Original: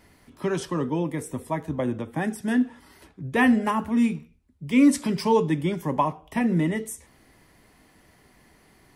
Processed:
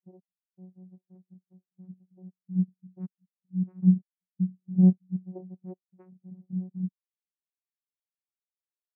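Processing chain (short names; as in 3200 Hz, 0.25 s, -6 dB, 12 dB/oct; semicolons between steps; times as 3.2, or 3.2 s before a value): slices in reverse order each 0.191 s, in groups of 3; vocoder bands 4, saw 184 Hz; spectral expander 2.5:1; gain -1 dB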